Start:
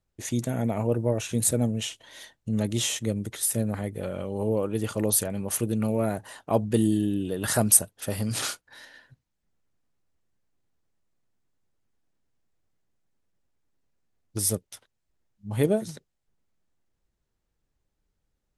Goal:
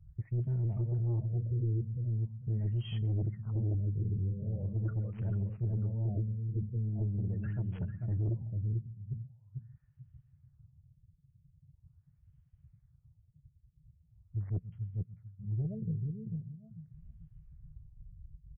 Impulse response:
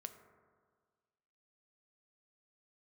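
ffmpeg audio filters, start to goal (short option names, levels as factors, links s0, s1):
-filter_complex "[0:a]highpass=f=63:p=1,acompressor=mode=upward:threshold=0.0126:ratio=2.5,equalizer=f=220:w=1.6:g=-4,agate=range=0.0224:threshold=0.00224:ratio=3:detection=peak,areverse,acompressor=threshold=0.0224:ratio=12,areverse,firequalizer=gain_entry='entry(150,0);entry(280,-27);entry(1300,-18);entry(2800,-19);entry(5400,-13)':delay=0.05:min_phase=1,asplit=2[s0][s1];[s1]adelay=444,lowpass=f=2400:p=1,volume=0.631,asplit=2[s2][s3];[s3]adelay=444,lowpass=f=2400:p=1,volume=0.26,asplit=2[s4][s5];[s5]adelay=444,lowpass=f=2400:p=1,volume=0.26,asplit=2[s6][s7];[s7]adelay=444,lowpass=f=2400:p=1,volume=0.26[s8];[s0][s2][s4][s6][s8]amix=inputs=5:normalize=0,asplit=2[s9][s10];[1:a]atrim=start_sample=2205,adelay=127[s11];[s10][s11]afir=irnorm=-1:irlink=0,volume=0.299[s12];[s9][s12]amix=inputs=2:normalize=0,afftdn=nr=18:nf=-57,aeval=exprs='0.0316*(cos(1*acos(clip(val(0)/0.0316,-1,1)))-cos(1*PI/2))+0.00891*(cos(5*acos(clip(val(0)/0.0316,-1,1)))-cos(5*PI/2))+0.000631*(cos(6*acos(clip(val(0)/0.0316,-1,1)))-cos(6*PI/2))+0.00112*(cos(8*acos(clip(val(0)/0.0316,-1,1)))-cos(8*PI/2))':c=same,afftfilt=real='re*lt(b*sr/1024,490*pow(3400/490,0.5+0.5*sin(2*PI*0.42*pts/sr)))':imag='im*lt(b*sr/1024,490*pow(3400/490,0.5+0.5*sin(2*PI*0.42*pts/sr)))':win_size=1024:overlap=0.75,volume=1.88"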